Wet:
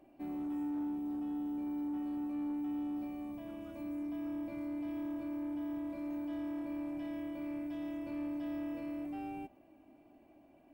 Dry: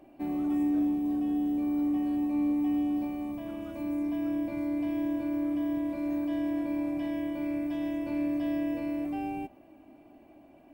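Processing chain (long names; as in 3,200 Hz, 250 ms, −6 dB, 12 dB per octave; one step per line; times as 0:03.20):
soft clipping −26 dBFS, distortion −19 dB
level −7 dB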